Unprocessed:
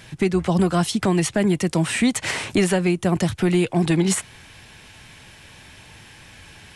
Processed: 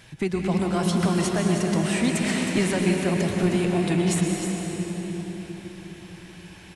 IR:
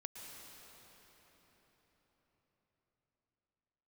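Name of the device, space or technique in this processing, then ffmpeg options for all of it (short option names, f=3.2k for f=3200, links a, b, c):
cave: -filter_complex "[0:a]aecho=1:1:314:0.355[a];[1:a]atrim=start_sample=2205[b];[a][b]afir=irnorm=-1:irlink=0"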